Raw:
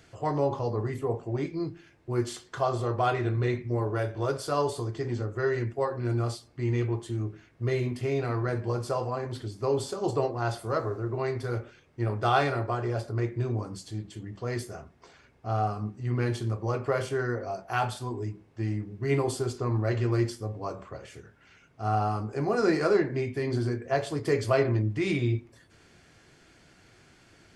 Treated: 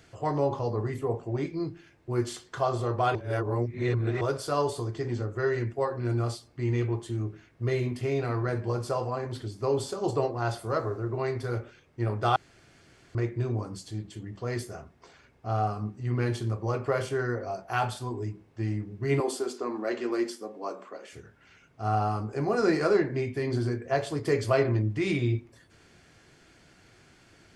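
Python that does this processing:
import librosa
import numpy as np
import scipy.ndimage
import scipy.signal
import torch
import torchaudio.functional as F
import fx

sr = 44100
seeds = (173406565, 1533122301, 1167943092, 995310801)

y = fx.steep_highpass(x, sr, hz=220.0, slope=36, at=(19.2, 21.13))
y = fx.edit(y, sr, fx.reverse_span(start_s=3.15, length_s=1.06),
    fx.room_tone_fill(start_s=12.36, length_s=0.79), tone=tone)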